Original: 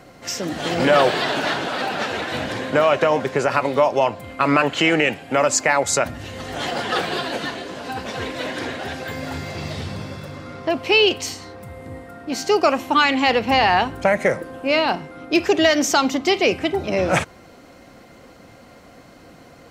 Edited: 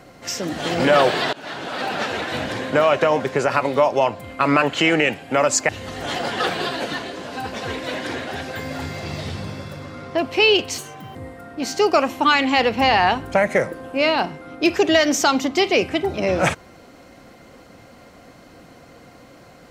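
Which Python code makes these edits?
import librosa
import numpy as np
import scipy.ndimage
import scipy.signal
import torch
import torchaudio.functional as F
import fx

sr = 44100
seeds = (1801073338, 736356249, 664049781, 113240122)

y = fx.edit(x, sr, fx.fade_in_from(start_s=1.33, length_s=0.59, floor_db=-23.5),
    fx.cut(start_s=5.69, length_s=0.52),
    fx.speed_span(start_s=11.3, length_s=0.55, speed=1.48), tone=tone)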